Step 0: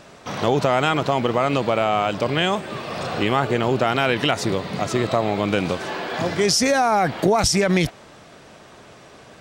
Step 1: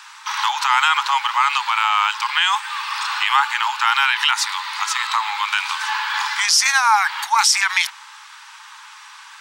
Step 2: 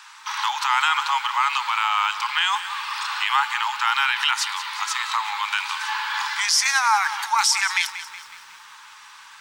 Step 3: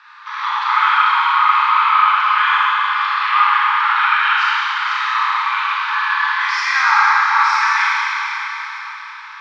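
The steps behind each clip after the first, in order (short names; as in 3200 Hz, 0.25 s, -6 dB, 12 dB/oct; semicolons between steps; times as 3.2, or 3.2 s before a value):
Chebyshev high-pass 850 Hz, order 8; maximiser +12.5 dB; gain -3.5 dB
lo-fi delay 0.184 s, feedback 55%, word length 7-bit, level -13 dB; gain -4 dB
speaker cabinet 400–3800 Hz, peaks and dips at 440 Hz -6 dB, 780 Hz -4 dB, 1200 Hz +6 dB, 1700 Hz +4 dB, 3000 Hz -7 dB; Schroeder reverb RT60 4 s, combs from 26 ms, DRR -8.5 dB; gain -3 dB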